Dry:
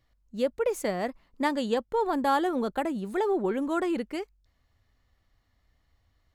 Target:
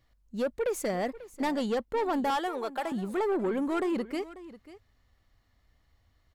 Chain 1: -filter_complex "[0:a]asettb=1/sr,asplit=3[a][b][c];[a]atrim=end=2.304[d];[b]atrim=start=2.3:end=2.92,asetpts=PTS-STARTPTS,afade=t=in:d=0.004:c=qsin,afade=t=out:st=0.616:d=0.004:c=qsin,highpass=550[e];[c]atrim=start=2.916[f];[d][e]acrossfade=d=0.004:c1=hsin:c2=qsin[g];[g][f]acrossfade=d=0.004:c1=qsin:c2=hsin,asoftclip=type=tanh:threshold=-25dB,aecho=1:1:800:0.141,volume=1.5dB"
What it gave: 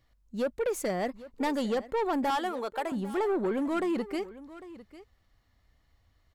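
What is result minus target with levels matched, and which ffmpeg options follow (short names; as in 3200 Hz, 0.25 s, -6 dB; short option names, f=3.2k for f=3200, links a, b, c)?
echo 0.259 s late
-filter_complex "[0:a]asettb=1/sr,asplit=3[a][b][c];[a]atrim=end=2.304[d];[b]atrim=start=2.3:end=2.92,asetpts=PTS-STARTPTS,afade=t=in:d=0.004:c=qsin,afade=t=out:st=0.616:d=0.004:c=qsin,highpass=550[e];[c]atrim=start=2.916[f];[d][e]acrossfade=d=0.004:c1=hsin:c2=qsin[g];[g][f]acrossfade=d=0.004:c1=qsin:c2=hsin,asoftclip=type=tanh:threshold=-25dB,aecho=1:1:541:0.141,volume=1.5dB"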